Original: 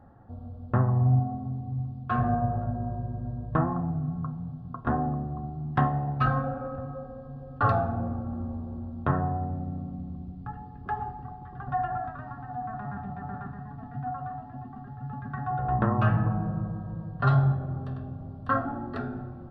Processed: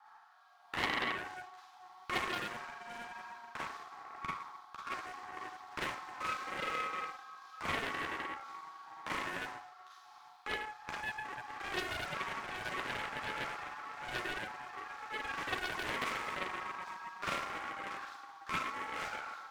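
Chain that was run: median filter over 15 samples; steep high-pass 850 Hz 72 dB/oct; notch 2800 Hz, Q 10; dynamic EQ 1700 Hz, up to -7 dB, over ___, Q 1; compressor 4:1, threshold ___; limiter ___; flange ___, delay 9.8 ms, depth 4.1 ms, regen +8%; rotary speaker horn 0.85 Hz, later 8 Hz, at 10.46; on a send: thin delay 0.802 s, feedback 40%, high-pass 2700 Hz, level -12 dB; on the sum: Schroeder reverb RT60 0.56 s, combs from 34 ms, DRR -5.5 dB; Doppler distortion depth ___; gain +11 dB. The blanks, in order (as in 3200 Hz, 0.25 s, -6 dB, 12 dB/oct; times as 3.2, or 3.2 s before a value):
-47 dBFS, -44 dBFS, -32 dBFS, 1.8 Hz, 0.71 ms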